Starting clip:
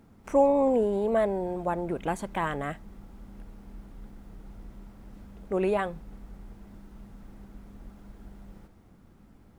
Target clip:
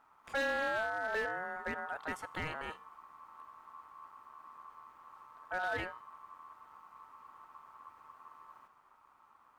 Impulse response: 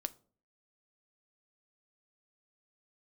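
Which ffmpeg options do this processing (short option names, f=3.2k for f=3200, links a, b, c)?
-af "bandreject=f=322.3:t=h:w=4,bandreject=f=644.6:t=h:w=4,bandreject=f=966.9:t=h:w=4,bandreject=f=1.2892k:t=h:w=4,bandreject=f=1.6115k:t=h:w=4,bandreject=f=1.9338k:t=h:w=4,bandreject=f=2.2561k:t=h:w=4,bandreject=f=2.5784k:t=h:w=4,bandreject=f=2.9007k:t=h:w=4,bandreject=f=3.223k:t=h:w=4,bandreject=f=3.5453k:t=h:w=4,bandreject=f=3.8676k:t=h:w=4,bandreject=f=4.1899k:t=h:w=4,bandreject=f=4.5122k:t=h:w=4,bandreject=f=4.8345k:t=h:w=4,bandreject=f=5.1568k:t=h:w=4,bandreject=f=5.4791k:t=h:w=4,bandreject=f=5.8014k:t=h:w=4,bandreject=f=6.1237k:t=h:w=4,bandreject=f=6.446k:t=h:w=4,bandreject=f=6.7683k:t=h:w=4,bandreject=f=7.0906k:t=h:w=4,bandreject=f=7.4129k:t=h:w=4,bandreject=f=7.7352k:t=h:w=4,bandreject=f=8.0575k:t=h:w=4,bandreject=f=8.3798k:t=h:w=4,bandreject=f=8.7021k:t=h:w=4,bandreject=f=9.0244k:t=h:w=4,bandreject=f=9.3467k:t=h:w=4,bandreject=f=9.669k:t=h:w=4,bandreject=f=9.9913k:t=h:w=4,bandreject=f=10.3136k:t=h:w=4,bandreject=f=10.6359k:t=h:w=4,bandreject=f=10.9582k:t=h:w=4,bandreject=f=11.2805k:t=h:w=4,bandreject=f=11.6028k:t=h:w=4,bandreject=f=11.9251k:t=h:w=4,bandreject=f=12.2474k:t=h:w=4,bandreject=f=12.5697k:t=h:w=4,aeval=exprs='val(0)*sin(2*PI*1100*n/s)':c=same,volume=22dB,asoftclip=hard,volume=-22dB,volume=-6.5dB"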